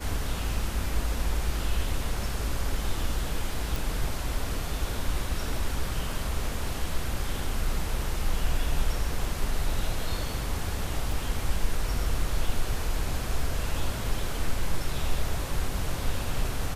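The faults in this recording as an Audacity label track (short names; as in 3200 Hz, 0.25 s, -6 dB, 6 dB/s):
3.760000	3.760000	pop
11.120000	11.120000	gap 2.2 ms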